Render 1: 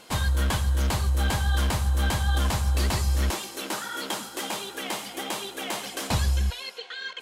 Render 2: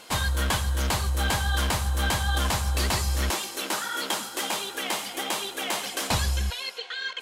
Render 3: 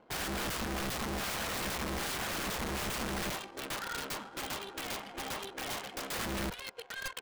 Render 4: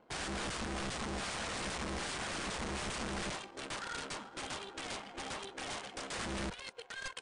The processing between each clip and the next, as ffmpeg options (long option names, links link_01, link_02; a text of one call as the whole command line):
ffmpeg -i in.wav -af "lowshelf=frequency=410:gain=-6.5,volume=3.5dB" out.wav
ffmpeg -i in.wav -af "adynamicsmooth=sensitivity=5.5:basefreq=550,aeval=exprs='(mod(18.8*val(0)+1,2)-1)/18.8':channel_layout=same,volume=-6dB" out.wav
ffmpeg -i in.wav -af "volume=-2.5dB" -ar 22050 -c:a libmp3lame -b:a 64k out.mp3